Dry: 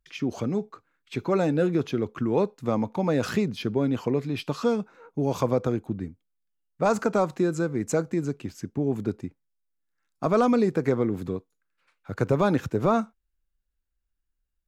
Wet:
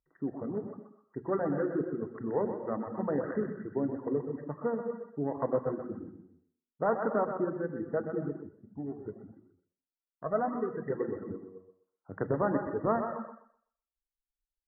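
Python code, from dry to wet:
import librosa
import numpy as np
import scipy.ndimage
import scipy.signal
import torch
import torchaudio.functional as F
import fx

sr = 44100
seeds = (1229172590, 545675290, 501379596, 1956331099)

y = fx.wiener(x, sr, points=25)
y = fx.brickwall_lowpass(y, sr, high_hz=2000.0)
y = fx.low_shelf(y, sr, hz=150.0, db=-9.5)
y = fx.hum_notches(y, sr, base_hz=60, count=4)
y = fx.rev_gated(y, sr, seeds[0], gate_ms=320, shape='flat', drr_db=1.5)
y = fx.dereverb_blind(y, sr, rt60_s=1.5)
y = fx.echo_thinned(y, sr, ms=126, feedback_pct=25, hz=320.0, wet_db=-7.0)
y = fx.comb_cascade(y, sr, direction='rising', hz=1.8, at=(8.46, 10.89), fade=0.02)
y = y * librosa.db_to_amplitude(-5.0)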